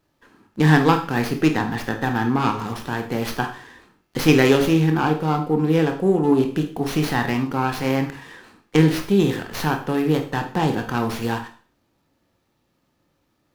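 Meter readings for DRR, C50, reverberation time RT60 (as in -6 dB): 4.5 dB, 9.5 dB, 0.45 s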